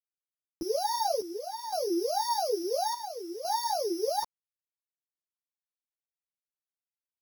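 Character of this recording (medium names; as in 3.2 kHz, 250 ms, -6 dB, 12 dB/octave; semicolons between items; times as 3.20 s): a buzz of ramps at a fixed pitch in blocks of 8 samples; chopped level 0.58 Hz, depth 65%, duty 70%; a quantiser's noise floor 10-bit, dither none; a shimmering, thickened sound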